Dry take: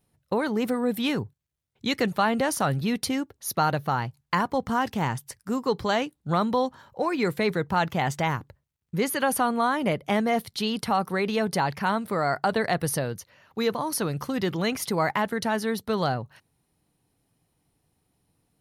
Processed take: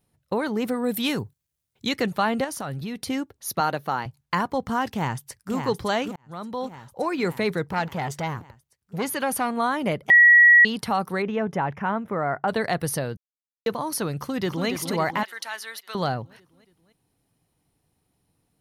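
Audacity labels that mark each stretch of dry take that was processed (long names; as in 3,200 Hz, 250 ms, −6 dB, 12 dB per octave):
0.840000	1.890000	high-shelf EQ 4,600 Hz +9 dB
2.440000	3.080000	downward compressor 2.5 to 1, threshold −31 dBFS
3.600000	4.060000	high-pass filter 210 Hz
4.920000	5.540000	delay throw 570 ms, feedback 65%, level −6 dB
6.160000	7.050000	fade in
7.660000	9.570000	saturating transformer saturates under 880 Hz
10.100000	10.650000	beep over 1,920 Hz −9.5 dBFS
11.220000	12.480000	moving average over 10 samples
13.170000	13.660000	silence
14.170000	14.680000	delay throw 280 ms, feedback 60%, level −7 dB
15.230000	15.950000	high-pass filter 1,400 Hz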